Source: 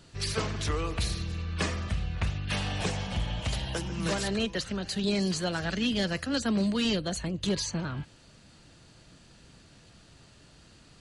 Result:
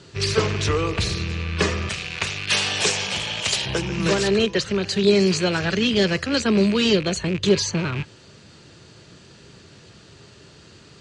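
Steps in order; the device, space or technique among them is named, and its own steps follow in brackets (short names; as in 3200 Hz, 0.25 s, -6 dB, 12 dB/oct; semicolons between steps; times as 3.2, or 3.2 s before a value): car door speaker with a rattle (rattling part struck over -37 dBFS, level -30 dBFS; speaker cabinet 91–7800 Hz, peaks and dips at 96 Hz +4 dB, 260 Hz -4 dB, 400 Hz +8 dB, 730 Hz -4 dB); 1.89–3.66 RIAA curve recording; gain +8.5 dB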